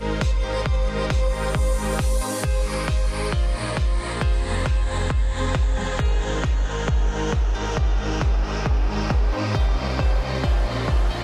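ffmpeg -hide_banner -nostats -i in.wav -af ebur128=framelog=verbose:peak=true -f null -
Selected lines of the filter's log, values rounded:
Integrated loudness:
  I:         -23.5 LUFS
  Threshold: -33.5 LUFS
Loudness range:
  LRA:         0.8 LU
  Threshold: -43.6 LUFS
  LRA low:   -23.9 LUFS
  LRA high:  -23.1 LUFS
True peak:
  Peak:      -11.9 dBFS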